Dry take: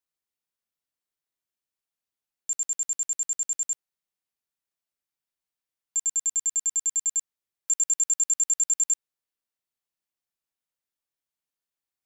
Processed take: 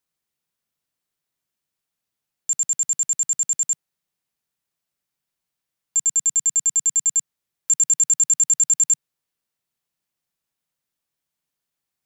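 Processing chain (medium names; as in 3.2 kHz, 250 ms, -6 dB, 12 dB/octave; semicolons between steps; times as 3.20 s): peaking EQ 150 Hz +7.5 dB 0.94 oct; trim +6.5 dB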